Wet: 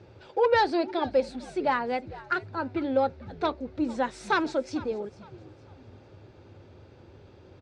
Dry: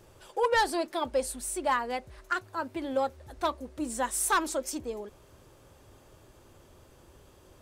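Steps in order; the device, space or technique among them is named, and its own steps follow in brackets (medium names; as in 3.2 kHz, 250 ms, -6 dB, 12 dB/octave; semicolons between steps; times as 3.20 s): frequency-shifting delay pedal into a guitar cabinet (frequency-shifting echo 452 ms, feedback 33%, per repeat -100 Hz, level -19 dB; cabinet simulation 89–4100 Hz, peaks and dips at 97 Hz +8 dB, 640 Hz -4 dB, 1.1 kHz -10 dB, 1.8 kHz -5 dB, 3.1 kHz -9 dB); trim +6 dB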